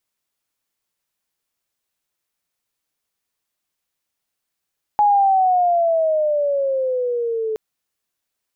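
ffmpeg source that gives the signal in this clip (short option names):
-f lavfi -i "aevalsrc='pow(10,(-11-9*t/2.57)/20)*sin(2*PI*840*2.57/(-11.5*log(2)/12)*(exp(-11.5*log(2)/12*t/2.57)-1))':d=2.57:s=44100"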